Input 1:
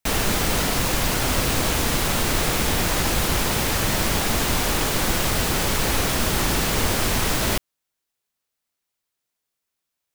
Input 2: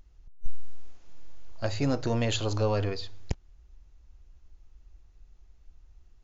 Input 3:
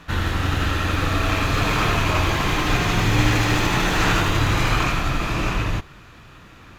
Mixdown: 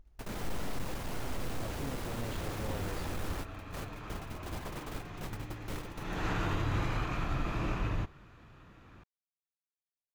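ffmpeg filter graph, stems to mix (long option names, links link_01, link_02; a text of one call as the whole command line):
ffmpeg -i stem1.wav -i stem2.wav -i stem3.wav -filter_complex "[0:a]asoftclip=type=tanh:threshold=-22dB,volume=-10.5dB[link_01];[1:a]alimiter=level_in=5dB:limit=-24dB:level=0:latency=1:release=249,volume=-5dB,volume=-4dB,asplit=2[link_02][link_03];[2:a]alimiter=limit=-11.5dB:level=0:latency=1:release=141,adelay=2250,volume=-9.5dB,afade=type=in:start_time=5.98:duration=0.26:silence=0.251189[link_04];[link_03]apad=whole_len=447233[link_05];[link_01][link_05]sidechaingate=range=-43dB:threshold=-53dB:ratio=16:detection=peak[link_06];[link_06][link_02][link_04]amix=inputs=3:normalize=0,highshelf=frequency=2000:gain=-10" out.wav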